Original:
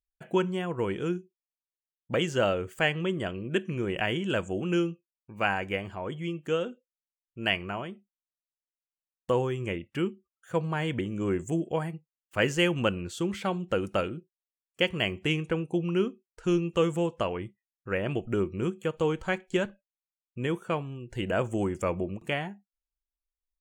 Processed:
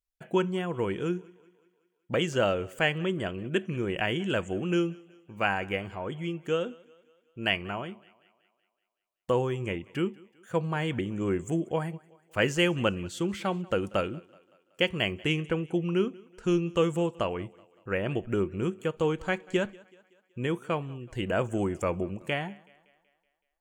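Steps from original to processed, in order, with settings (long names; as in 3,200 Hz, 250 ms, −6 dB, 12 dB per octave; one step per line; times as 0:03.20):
feedback echo with a high-pass in the loop 188 ms, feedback 53%, high-pass 190 Hz, level −23.5 dB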